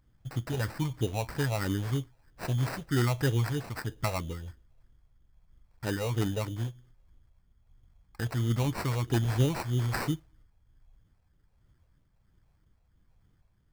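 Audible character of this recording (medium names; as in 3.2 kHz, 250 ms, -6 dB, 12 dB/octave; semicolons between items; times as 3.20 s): phasing stages 4, 3.1 Hz, lowest notch 300–1000 Hz; aliases and images of a low sample rate 3.3 kHz, jitter 0%; tremolo triangle 1.3 Hz, depth 40%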